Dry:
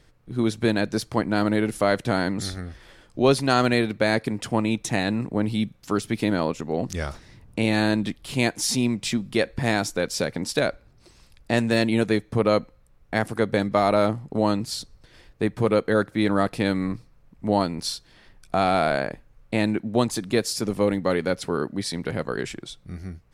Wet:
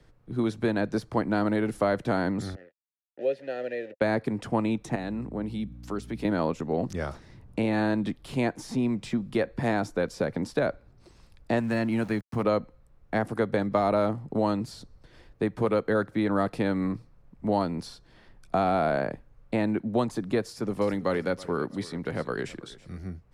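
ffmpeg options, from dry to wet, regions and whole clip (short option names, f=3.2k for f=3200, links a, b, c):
-filter_complex "[0:a]asettb=1/sr,asplit=3[a][b][c];[a]atrim=end=2.554[d];[b]atrim=start=2.55:end=4.01,asetpts=PTS-STARTPTS,afade=t=in:d=0.004:c=qsin,afade=t=out:st=1.456:d=0.004:c=qsin,acrusher=bits=4:mix=0:aa=0.5,asplit=3[e][f][g];[e]bandpass=f=530:t=q:w=8,volume=0dB[h];[f]bandpass=f=1.84k:t=q:w=8,volume=-6dB[i];[g]bandpass=f=2.48k:t=q:w=8,volume=-9dB[j];[h][i][j]amix=inputs=3:normalize=0[k];[c]atrim=start=4.006[l];[d][k]acrossfade=d=0.004:c1=hsin:c2=qsin[m];[m][l]acrossfade=d=0.004:c1=qsin:c2=hsin,asettb=1/sr,asplit=3[n][o][p];[n]atrim=end=4.954[q];[o]atrim=start=4.95:end=6.25,asetpts=PTS-STARTPTS,afade=t=in:d=0.004:c=qsin,afade=t=out:st=1.296:d=0.004:c=qsin,highpass=f=110:w=0.5412,highpass=f=110:w=1.3066,acompressor=threshold=-40dB:ratio=1.5:attack=3.2:release=140:knee=1:detection=peak,aeval=exprs='val(0)+0.00891*(sin(2*PI*60*n/s)+sin(2*PI*2*60*n/s)/2+sin(2*PI*3*60*n/s)/3+sin(2*PI*4*60*n/s)/4+sin(2*PI*5*60*n/s)/5)':c=same[r];[p]atrim=start=6.246[s];[q][r]acrossfade=d=0.004:c1=hsin:c2=qsin[t];[t][s]acrossfade=d=0.004:c1=qsin:c2=hsin,asettb=1/sr,asplit=3[u][v][w];[u]atrim=end=11.604[x];[v]atrim=start=11.6:end=12.43,asetpts=PTS-STARTPTS,afade=t=in:d=0.004:c=qsin,afade=t=out:st=0.826:d=0.004:c=qsin,equalizer=f=450:w=1.4:g=-9,bandreject=f=3.6k:w=5.1,aeval=exprs='val(0)*gte(abs(val(0)),0.0112)':c=same[y];[w]atrim=start=12.426[z];[x][y]acrossfade=d=0.004:c1=hsin:c2=qsin[aa];[aa][z]acrossfade=d=0.004:c1=qsin:c2=hsin,asettb=1/sr,asplit=3[ab][ac][ad];[ab]atrim=end=20.494[ae];[ac]atrim=start=20.49:end=22.98,asetpts=PTS-STARTPTS,afade=t=in:d=0.004:c=qsin,afade=t=out:st=2.486:d=0.004:c=qsin,tiltshelf=f=1.3k:g=-3.5,aecho=1:1:325|650|975:0.1|0.036|0.013,atrim=end_sample=109809[af];[ad]atrim=start=22.976[ag];[ae][af]acrossfade=d=0.004:c1=hsin:c2=qsin[ah];[ah][ag]acrossfade=d=0.004:c1=qsin:c2=hsin,equalizer=f=2.4k:t=o:w=1.5:g=-3,acrossover=split=80|160|680|2000[ai][aj][ak][al][am];[ai]acompressor=threshold=-48dB:ratio=4[an];[aj]acompressor=threshold=-38dB:ratio=4[ao];[ak]acompressor=threshold=-24dB:ratio=4[ap];[al]acompressor=threshold=-26dB:ratio=4[aq];[am]acompressor=threshold=-39dB:ratio=4[ar];[an][ao][ap][aq][ar]amix=inputs=5:normalize=0,highshelf=f=3.9k:g=-9.5"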